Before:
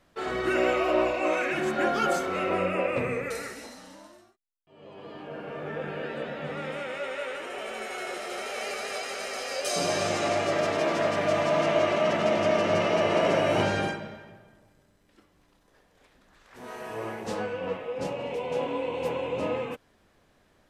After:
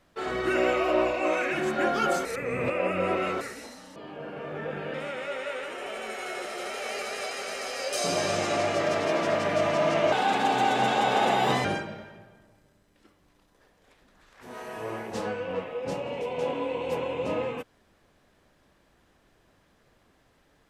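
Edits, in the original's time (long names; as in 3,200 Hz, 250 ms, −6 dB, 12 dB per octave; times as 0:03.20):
0:02.25–0:03.41: reverse
0:03.96–0:05.07: remove
0:06.05–0:06.66: remove
0:11.84–0:13.78: play speed 127%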